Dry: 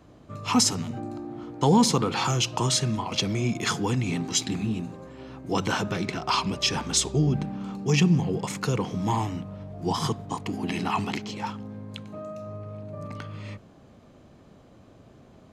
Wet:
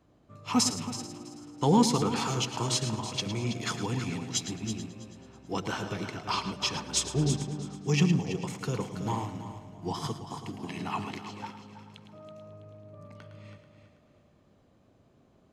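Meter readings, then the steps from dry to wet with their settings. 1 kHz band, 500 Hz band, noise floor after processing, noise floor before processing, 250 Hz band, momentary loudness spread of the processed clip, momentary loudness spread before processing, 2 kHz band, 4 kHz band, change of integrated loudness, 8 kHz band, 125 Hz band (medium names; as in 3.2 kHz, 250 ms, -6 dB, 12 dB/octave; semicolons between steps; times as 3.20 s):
-5.0 dB, -4.5 dB, -63 dBFS, -53 dBFS, -4.5 dB, 23 LU, 17 LU, -6.0 dB, -5.0 dB, -4.5 dB, -4.5 dB, -5.0 dB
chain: multi-head delay 109 ms, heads first and third, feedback 49%, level -9.5 dB; upward expansion 1.5:1, over -34 dBFS; trim -2.5 dB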